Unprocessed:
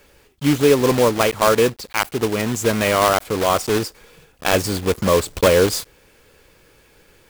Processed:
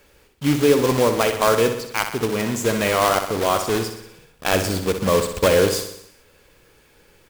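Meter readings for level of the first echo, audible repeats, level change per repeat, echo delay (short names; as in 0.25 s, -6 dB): -8.5 dB, 6, -4.5 dB, 62 ms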